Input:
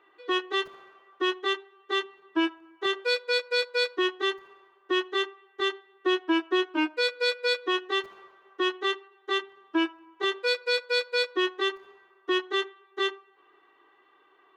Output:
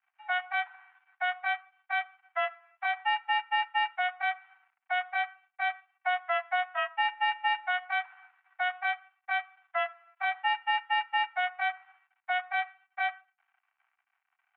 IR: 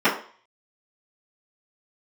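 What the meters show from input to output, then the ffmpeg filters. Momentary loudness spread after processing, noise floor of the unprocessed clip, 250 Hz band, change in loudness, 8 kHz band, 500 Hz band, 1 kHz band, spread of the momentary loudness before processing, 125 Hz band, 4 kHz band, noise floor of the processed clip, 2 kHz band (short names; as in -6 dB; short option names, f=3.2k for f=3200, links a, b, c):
7 LU, -63 dBFS, under -40 dB, -3.0 dB, under -30 dB, -12.5 dB, +5.0 dB, 6 LU, n/a, -9.5 dB, -83 dBFS, +0.5 dB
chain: -filter_complex "[0:a]aeval=exprs='sgn(val(0))*max(abs(val(0))-0.00126,0)':c=same,asplit=2[a][b];[1:a]atrim=start_sample=2205,afade=t=out:st=0.31:d=0.01,atrim=end_sample=14112[c];[b][c]afir=irnorm=-1:irlink=0,volume=-36.5dB[d];[a][d]amix=inputs=2:normalize=0,highpass=f=400:t=q:w=0.5412,highpass=f=400:t=q:w=1.307,lowpass=f=2.3k:t=q:w=0.5176,lowpass=f=2.3k:t=q:w=0.7071,lowpass=f=2.3k:t=q:w=1.932,afreqshift=360"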